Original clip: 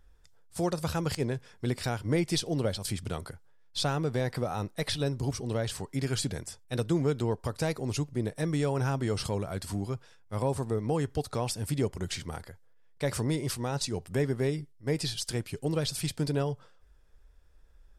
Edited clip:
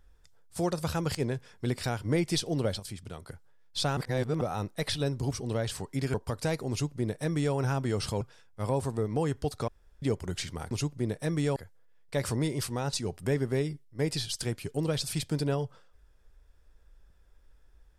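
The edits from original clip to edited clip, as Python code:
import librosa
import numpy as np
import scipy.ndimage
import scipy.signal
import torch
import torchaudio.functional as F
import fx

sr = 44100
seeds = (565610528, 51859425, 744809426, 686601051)

y = fx.edit(x, sr, fx.clip_gain(start_s=2.8, length_s=0.49, db=-7.5),
    fx.reverse_span(start_s=3.97, length_s=0.44),
    fx.cut(start_s=6.14, length_s=1.17),
    fx.duplicate(start_s=7.87, length_s=0.85, to_s=12.44),
    fx.cut(start_s=9.38, length_s=0.56),
    fx.room_tone_fill(start_s=11.41, length_s=0.34), tone=tone)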